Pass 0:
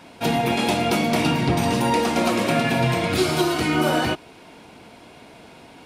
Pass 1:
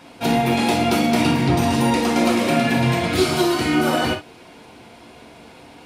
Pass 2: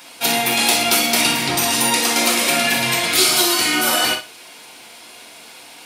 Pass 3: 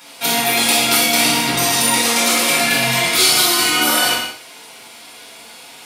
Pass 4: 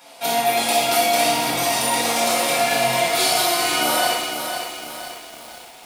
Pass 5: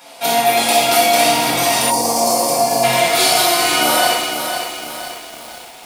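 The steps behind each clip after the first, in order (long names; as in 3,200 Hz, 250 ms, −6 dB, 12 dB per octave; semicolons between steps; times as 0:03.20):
reverb whose tail is shaped and stops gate 80 ms flat, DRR 3.5 dB
spectral tilt +4.5 dB per octave; flutter between parallel walls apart 10.4 metres, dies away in 0.26 s; level +1 dB
reverb whose tail is shaped and stops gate 240 ms falling, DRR −2.5 dB; level −2.5 dB
parametric band 680 Hz +11 dB 0.84 octaves; feedback echo at a low word length 504 ms, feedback 55%, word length 5 bits, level −7 dB; level −7.5 dB
gain on a spectral selection 0:01.91–0:02.84, 1,200–4,200 Hz −15 dB; level +5 dB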